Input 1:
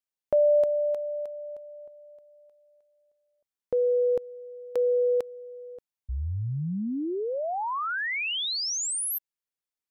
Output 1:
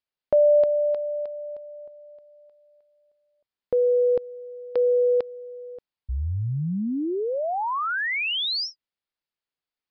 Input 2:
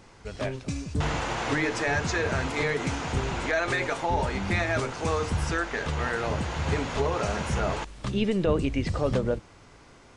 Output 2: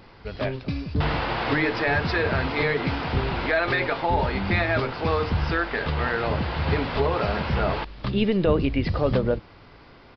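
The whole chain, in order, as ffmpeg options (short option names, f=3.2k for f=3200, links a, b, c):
-af "aresample=11025,aresample=44100,volume=3.5dB"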